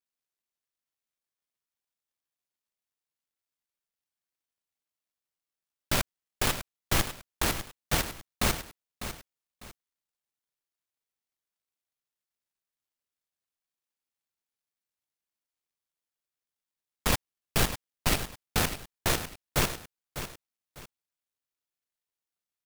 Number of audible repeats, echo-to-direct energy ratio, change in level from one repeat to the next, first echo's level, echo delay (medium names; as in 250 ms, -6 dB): 2, -10.5 dB, -11.0 dB, -11.0 dB, 600 ms